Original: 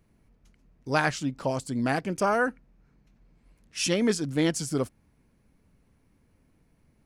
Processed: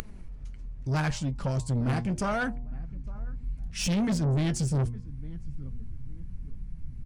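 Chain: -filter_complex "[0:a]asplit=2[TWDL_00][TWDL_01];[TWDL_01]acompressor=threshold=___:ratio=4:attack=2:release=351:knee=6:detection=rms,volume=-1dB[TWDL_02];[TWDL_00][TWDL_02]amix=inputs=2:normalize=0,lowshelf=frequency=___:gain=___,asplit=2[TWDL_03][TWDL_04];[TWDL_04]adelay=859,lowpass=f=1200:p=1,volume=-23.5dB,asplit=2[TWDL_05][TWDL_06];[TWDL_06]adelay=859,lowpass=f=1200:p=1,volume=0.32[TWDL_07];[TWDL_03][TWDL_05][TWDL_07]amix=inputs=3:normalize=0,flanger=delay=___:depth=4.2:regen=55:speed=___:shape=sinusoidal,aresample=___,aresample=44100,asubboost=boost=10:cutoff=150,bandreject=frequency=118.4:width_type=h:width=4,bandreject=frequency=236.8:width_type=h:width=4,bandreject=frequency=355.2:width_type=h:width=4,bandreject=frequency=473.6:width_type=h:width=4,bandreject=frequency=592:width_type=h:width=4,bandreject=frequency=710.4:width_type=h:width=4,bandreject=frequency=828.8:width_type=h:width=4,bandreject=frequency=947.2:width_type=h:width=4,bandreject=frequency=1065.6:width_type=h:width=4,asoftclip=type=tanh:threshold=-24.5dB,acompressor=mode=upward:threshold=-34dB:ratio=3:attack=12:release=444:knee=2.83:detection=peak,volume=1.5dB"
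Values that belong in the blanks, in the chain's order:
-40dB, 98, 11.5, 4.6, 0.77, 22050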